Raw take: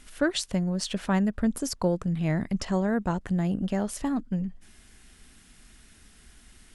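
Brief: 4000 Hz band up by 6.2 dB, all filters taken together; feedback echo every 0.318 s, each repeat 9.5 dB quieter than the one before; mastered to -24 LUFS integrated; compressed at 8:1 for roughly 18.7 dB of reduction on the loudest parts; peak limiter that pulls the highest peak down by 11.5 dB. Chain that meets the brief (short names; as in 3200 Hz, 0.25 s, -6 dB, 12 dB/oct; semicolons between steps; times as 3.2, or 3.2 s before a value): bell 4000 Hz +7.5 dB; compressor 8:1, threshold -40 dBFS; limiter -36.5 dBFS; feedback echo 0.318 s, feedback 33%, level -9.5 dB; gain +22.5 dB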